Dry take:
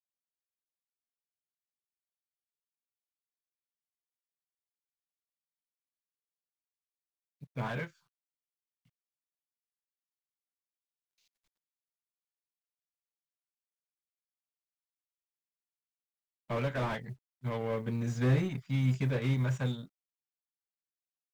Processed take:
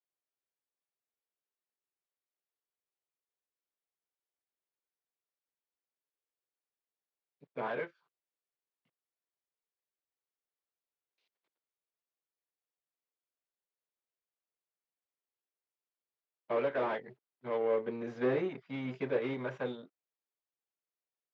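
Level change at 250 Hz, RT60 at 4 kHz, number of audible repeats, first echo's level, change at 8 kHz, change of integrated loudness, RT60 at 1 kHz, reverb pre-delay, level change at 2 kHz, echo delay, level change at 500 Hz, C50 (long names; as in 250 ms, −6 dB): −4.0 dB, no reverb audible, no echo audible, no echo audible, can't be measured, −2.5 dB, no reverb audible, no reverb audible, −1.5 dB, no echo audible, +4.5 dB, no reverb audible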